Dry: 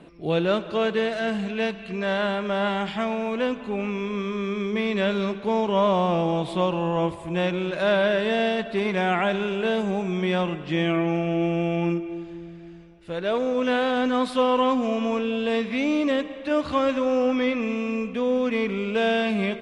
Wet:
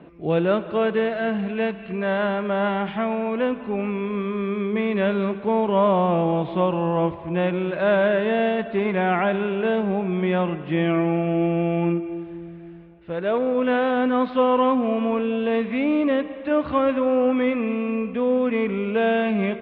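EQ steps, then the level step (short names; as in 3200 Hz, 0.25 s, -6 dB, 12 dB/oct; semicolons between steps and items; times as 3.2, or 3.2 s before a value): HPF 48 Hz; Bessel low-pass 2100 Hz, order 6; +2.5 dB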